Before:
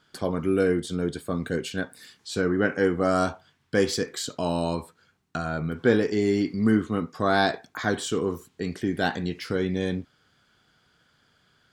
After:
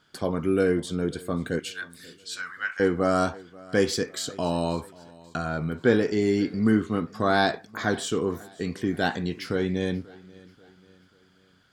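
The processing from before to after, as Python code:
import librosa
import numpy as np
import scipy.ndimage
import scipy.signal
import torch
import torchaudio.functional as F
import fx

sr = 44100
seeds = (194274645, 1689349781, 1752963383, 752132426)

y = fx.highpass(x, sr, hz=1200.0, slope=24, at=(1.59, 2.8))
y = fx.echo_feedback(y, sr, ms=536, feedback_pct=45, wet_db=-22.5)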